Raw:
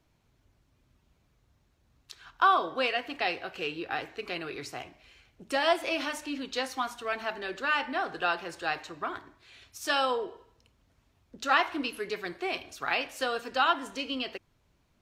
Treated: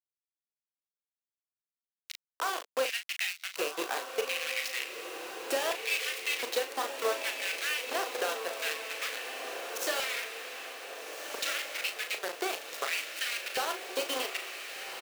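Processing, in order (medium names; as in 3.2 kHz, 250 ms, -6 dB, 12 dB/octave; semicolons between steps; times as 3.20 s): compression 16:1, threshold -38 dBFS, peak gain reduction 21 dB; companded quantiser 2-bit; LFO high-pass square 0.7 Hz 470–2200 Hz; doubling 38 ms -8 dB; echo that smears into a reverb 1546 ms, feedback 59%, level -6.5 dB; trim -2.5 dB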